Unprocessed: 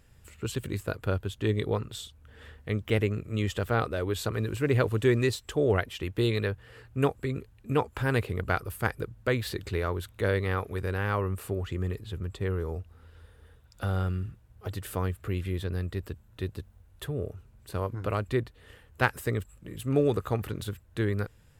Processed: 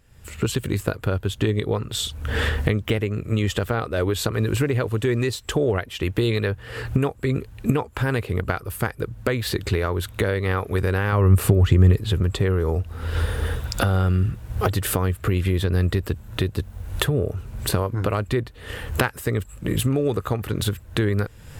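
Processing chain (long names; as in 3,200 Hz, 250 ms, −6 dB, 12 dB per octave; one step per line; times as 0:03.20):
camcorder AGC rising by 43 dB per second
0:11.12–0:11.96: parametric band 89 Hz +7.5 dB 2.9 octaves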